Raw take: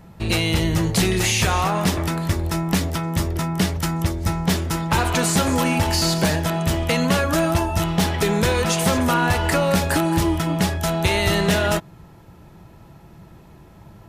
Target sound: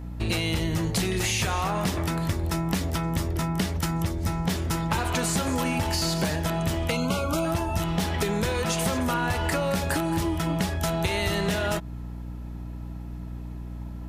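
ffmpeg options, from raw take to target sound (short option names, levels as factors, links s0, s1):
-filter_complex "[0:a]aeval=exprs='val(0)+0.0224*(sin(2*PI*60*n/s)+sin(2*PI*2*60*n/s)/2+sin(2*PI*3*60*n/s)/3+sin(2*PI*4*60*n/s)/4+sin(2*PI*5*60*n/s)/5)':c=same,acompressor=threshold=0.0891:ratio=6,asettb=1/sr,asplit=3[s0][s1][s2];[s0]atrim=end=6.914[s3];[s1]atrim=start=6.91:end=7.45,asetpts=PTS-STARTPTS,afade=t=in:d=0.004:c=qsin,afade=t=out:st=0.536:d=0.004:c=qsin,asuperstop=centerf=1800:order=20:qfactor=3.7[s4];[s2]atrim=start=7.446[s5];[s3][s4]acrossfade=d=0.004:c1=hsin:c2=qsin[s6];[s6][s5]acrossfade=d=0.004:c1=qsin:c2=hsin,volume=0.841"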